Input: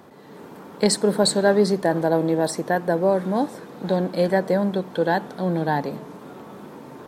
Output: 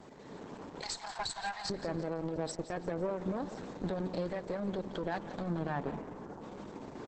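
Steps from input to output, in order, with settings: 0.82–1.70 s: Chebyshev high-pass 660 Hz, order 10; 2.36–2.78 s: gate -26 dBFS, range -39 dB; 5.73–6.40 s: low-pass 3.9 kHz -> 1.5 kHz 24 dB/octave; peaking EQ 1.3 kHz -6 dB 0.25 oct; compression 6:1, threshold -25 dBFS, peak gain reduction 10.5 dB; peak limiter -21.5 dBFS, peak gain reduction 7.5 dB; bit crusher 10-bit; valve stage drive 26 dB, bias 0.75; feedback delay 171 ms, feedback 45%, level -12 dB; Opus 10 kbps 48 kHz

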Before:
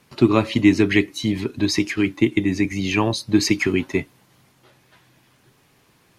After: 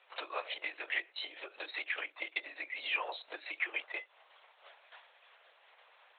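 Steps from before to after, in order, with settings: LPC vocoder at 8 kHz whisper; compression 12:1, threshold -27 dBFS, peak gain reduction 19 dB; steep high-pass 550 Hz 36 dB/octave

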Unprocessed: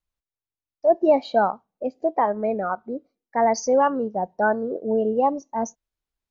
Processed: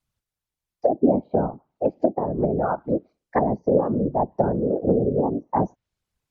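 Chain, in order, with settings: whisper effect; low-pass that closes with the level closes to 340 Hz, closed at -19.5 dBFS; trim +6 dB

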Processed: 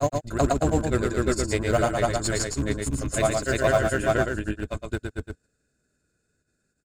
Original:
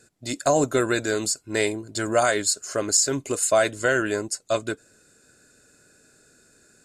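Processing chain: octave divider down 2 oct, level -5 dB; gate -47 dBFS, range -14 dB; tone controls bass +7 dB, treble -3 dB; in parallel at -5.5 dB: Schmitt trigger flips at -17 dBFS; on the sum: granulator, spray 606 ms, pitch spread up and down by 0 st; on a send: delay 115 ms -4.5 dB; on the sum: trim -3 dB

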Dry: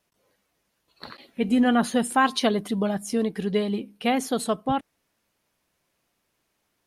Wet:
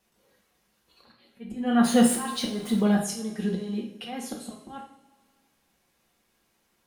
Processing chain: 1.84–2.81 s: jump at every zero crossing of -34 dBFS; slow attack 540 ms; two-slope reverb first 0.49 s, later 2.1 s, from -19 dB, DRR -1 dB

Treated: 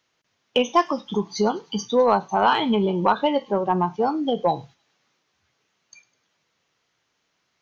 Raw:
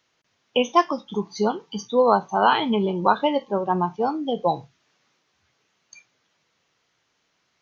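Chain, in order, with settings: gate -45 dBFS, range -7 dB; in parallel at +2 dB: compression, threshold -27 dBFS, peak gain reduction 15 dB; on the sum: saturation -3.5 dBFS, distortion -23 dB; feedback echo behind a high-pass 102 ms, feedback 47%, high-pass 3.4 kHz, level -18 dB; trim -2 dB

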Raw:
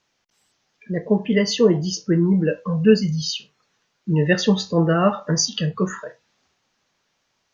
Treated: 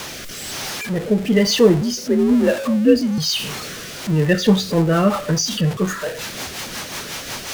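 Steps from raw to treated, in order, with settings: jump at every zero crossing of -23.5 dBFS; 1.81–3.18 s: frequency shift +52 Hz; rotary cabinet horn 1.1 Hz, later 5.5 Hz, at 3.95 s; trim +2.5 dB

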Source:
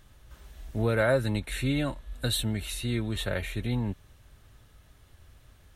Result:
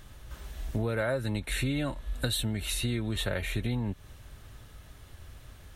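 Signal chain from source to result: compression 5:1, threshold -34 dBFS, peak gain reduction 13.5 dB; trim +6.5 dB

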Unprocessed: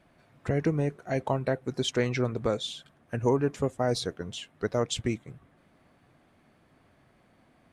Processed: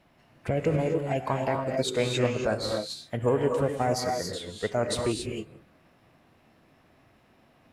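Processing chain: gated-style reverb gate 300 ms rising, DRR 2.5 dB; formant shift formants +3 st

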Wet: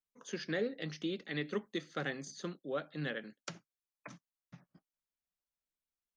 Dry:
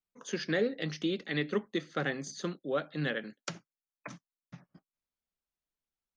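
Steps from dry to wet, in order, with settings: 1.45–2.25 s: treble shelf 4.5 kHz +6.5 dB; trim -5.5 dB

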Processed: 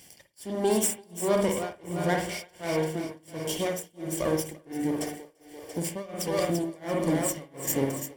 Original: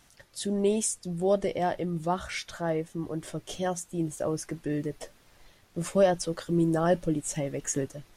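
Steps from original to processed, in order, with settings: comb filter that takes the minimum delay 0.39 ms; treble shelf 4.3 kHz +9.5 dB; comb of notches 1.3 kHz; two-band feedback delay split 330 Hz, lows 131 ms, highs 341 ms, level -8 dB; reverberation, pre-delay 51 ms, DRR 3 dB; tremolo 1.4 Hz, depth 97%; in parallel at +0.5 dB: compression, threshold -36 dBFS, peak gain reduction 13.5 dB

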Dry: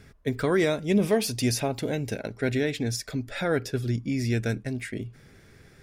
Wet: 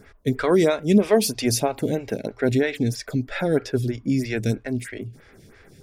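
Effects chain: lamp-driven phase shifter 3.1 Hz; trim +7 dB

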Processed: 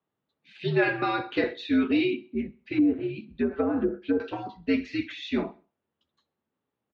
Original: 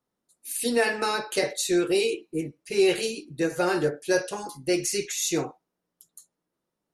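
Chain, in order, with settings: 2.57–4.20 s: low-pass that closes with the level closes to 510 Hz, closed at -19 dBFS; mistuned SSB -88 Hz 210–3600 Hz; feedback delay 65 ms, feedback 46%, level -23 dB

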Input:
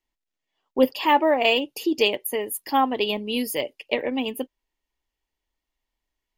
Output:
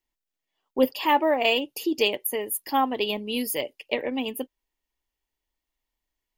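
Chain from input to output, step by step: treble shelf 9.9 kHz +7 dB; trim -2.5 dB

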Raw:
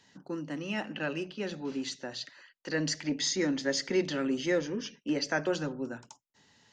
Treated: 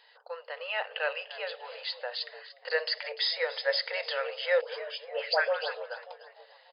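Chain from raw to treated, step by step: 4.61–5.81 s: phase dispersion highs, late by 115 ms, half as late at 1.6 kHz; frequency-shifting echo 295 ms, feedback 41%, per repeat +90 Hz, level -16.5 dB; FFT band-pass 440–5100 Hz; trim +4.5 dB

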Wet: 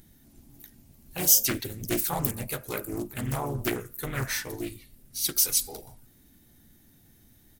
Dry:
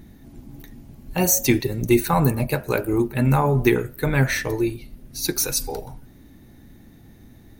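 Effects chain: harmony voices -12 st -16 dB, -3 st -5 dB; pre-emphasis filter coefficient 0.8; loudspeaker Doppler distortion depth 0.52 ms

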